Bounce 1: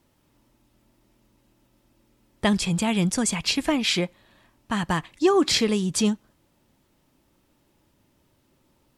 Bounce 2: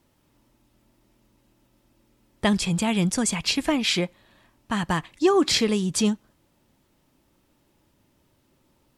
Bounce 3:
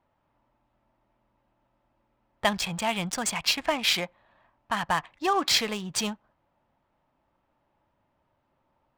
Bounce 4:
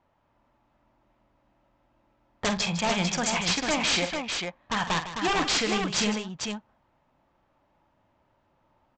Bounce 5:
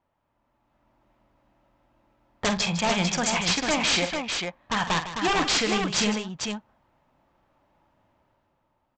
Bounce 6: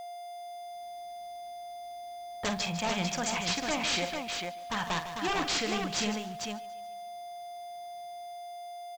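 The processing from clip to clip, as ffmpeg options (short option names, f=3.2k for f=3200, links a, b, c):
-af anull
-af "lowshelf=f=520:t=q:w=1.5:g=-9.5,adynamicsmooth=sensitivity=6:basefreq=1.7k"
-af "aresample=16000,aeval=exprs='0.0708*(abs(mod(val(0)/0.0708+3,4)-2)-1)':c=same,aresample=44100,aecho=1:1:47|155|447:0.335|0.251|0.562,volume=3dB"
-af "dynaudnorm=f=110:g=13:m=8dB,volume=-6dB"
-af "aeval=exprs='val(0)+0.0251*sin(2*PI*700*n/s)':c=same,aeval=exprs='val(0)*gte(abs(val(0)),0.01)':c=same,aecho=1:1:142|284|426|568:0.1|0.053|0.0281|0.0149,volume=-7dB"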